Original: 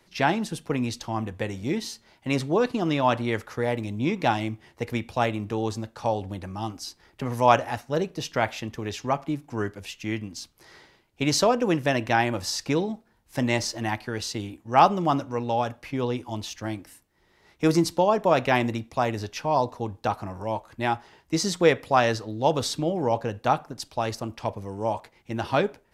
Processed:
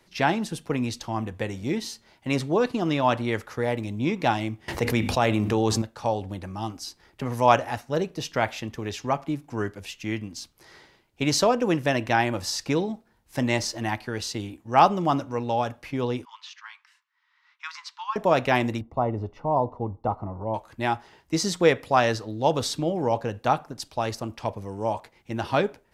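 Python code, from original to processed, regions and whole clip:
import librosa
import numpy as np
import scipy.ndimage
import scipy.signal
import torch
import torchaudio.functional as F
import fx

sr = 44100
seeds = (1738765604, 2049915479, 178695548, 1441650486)

y = fx.chain(x, sr, fx.hum_notches(base_hz=50, count=6),
    fx.env_flatten(amount_pct=70), at=(4.68, 5.82))
y = fx.chain(y, sr, fx.steep_highpass(hz=970.0, slope=72),
    fx.air_absorb(metres=190.0), at=(16.25, 18.16))
y = fx.chain(y, sr, fx.savgol(points=65),
    fx.low_shelf(hz=66.0, db=8.5), at=(18.81, 20.54))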